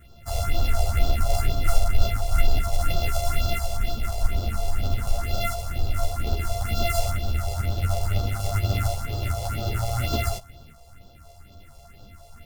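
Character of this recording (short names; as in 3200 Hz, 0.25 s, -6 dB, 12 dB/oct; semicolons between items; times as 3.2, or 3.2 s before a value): a buzz of ramps at a fixed pitch in blocks of 64 samples; phasing stages 4, 2.1 Hz, lowest notch 250–2000 Hz; tremolo saw up 0.56 Hz, depth 30%; a shimmering, thickened sound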